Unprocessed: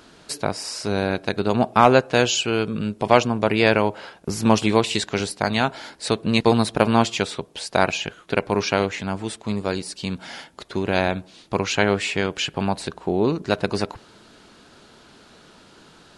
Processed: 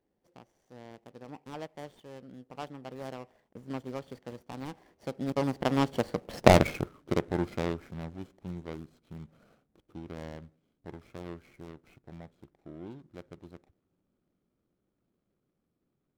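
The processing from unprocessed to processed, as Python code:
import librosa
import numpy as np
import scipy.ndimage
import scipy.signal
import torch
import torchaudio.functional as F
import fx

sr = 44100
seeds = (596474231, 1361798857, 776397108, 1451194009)

y = scipy.signal.medfilt(x, 41)
y = fx.doppler_pass(y, sr, speed_mps=58, closest_m=9.2, pass_at_s=6.47)
y = y * librosa.db_to_amplitude(7.5)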